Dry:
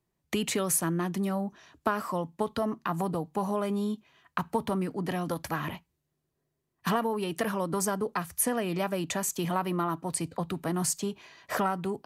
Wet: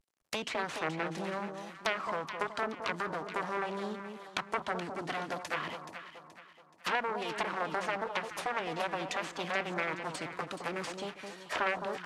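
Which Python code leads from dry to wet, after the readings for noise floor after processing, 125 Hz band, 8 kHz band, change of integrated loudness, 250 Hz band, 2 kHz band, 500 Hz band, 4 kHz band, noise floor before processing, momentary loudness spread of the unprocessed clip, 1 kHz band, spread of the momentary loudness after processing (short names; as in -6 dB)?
-58 dBFS, -12.5 dB, -16.0 dB, -5.0 dB, -11.5 dB, +3.0 dB, -5.0 dB, -0.5 dB, -81 dBFS, 6 LU, -2.5 dB, 8 LU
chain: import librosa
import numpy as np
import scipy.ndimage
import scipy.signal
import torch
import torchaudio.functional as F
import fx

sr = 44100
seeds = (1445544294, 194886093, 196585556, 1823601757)

y = fx.cvsd(x, sr, bps=64000)
y = fx.cheby_harmonics(y, sr, harmonics=(3, 5, 6, 7), levels_db=(-12, -19, -9, -8), full_scale_db=-11.0)
y = fx.highpass(y, sr, hz=710.0, slope=6)
y = fx.vibrato(y, sr, rate_hz=0.77, depth_cents=74.0)
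y = fx.env_lowpass_down(y, sr, base_hz=2800.0, full_db=-25.0)
y = fx.echo_alternate(y, sr, ms=213, hz=1100.0, feedback_pct=63, wet_db=-6)
y = F.gain(torch.from_numpy(y), -5.0).numpy()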